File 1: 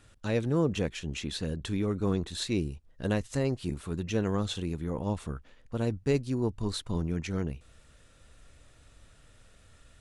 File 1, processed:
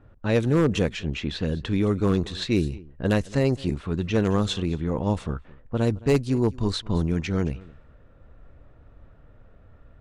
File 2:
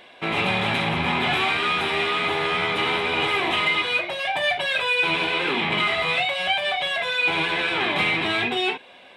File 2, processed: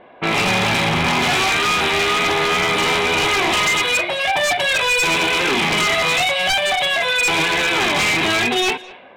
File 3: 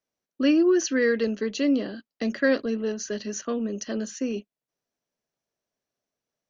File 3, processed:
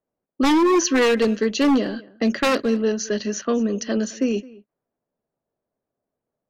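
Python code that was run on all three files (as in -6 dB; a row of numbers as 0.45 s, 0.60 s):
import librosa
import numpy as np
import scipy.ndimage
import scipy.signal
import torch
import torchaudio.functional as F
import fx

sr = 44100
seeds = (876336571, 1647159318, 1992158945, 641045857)

y = 10.0 ** (-19.0 / 20.0) * (np.abs((x / 10.0 ** (-19.0 / 20.0) + 3.0) % 4.0 - 2.0) - 1.0)
y = y + 10.0 ** (-21.5 / 20.0) * np.pad(y, (int(216 * sr / 1000.0), 0))[:len(y)]
y = fx.env_lowpass(y, sr, base_hz=930.0, full_db=-24.5)
y = F.gain(torch.from_numpy(y), 7.0).numpy()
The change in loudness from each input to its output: +6.5 LU, +5.5 LU, +4.5 LU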